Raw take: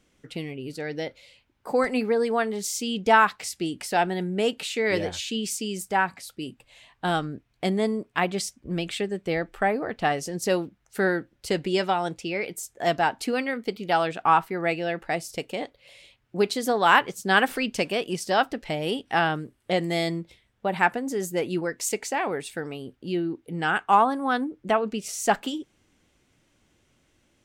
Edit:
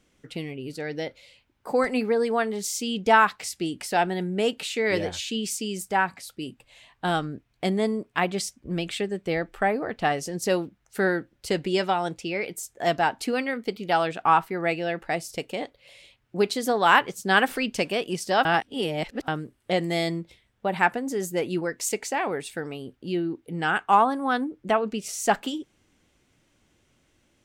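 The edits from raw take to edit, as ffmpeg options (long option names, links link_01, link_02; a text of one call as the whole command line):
ffmpeg -i in.wav -filter_complex "[0:a]asplit=3[link_01][link_02][link_03];[link_01]atrim=end=18.452[link_04];[link_02]atrim=start=18.448:end=19.282,asetpts=PTS-STARTPTS,areverse[link_05];[link_03]atrim=start=19.278[link_06];[link_04][link_05]acrossfade=duration=0.004:curve1=hsin:curve2=hsin[link_07];[link_07][link_06]acrossfade=duration=0.004:curve1=hsin:curve2=hsin" out.wav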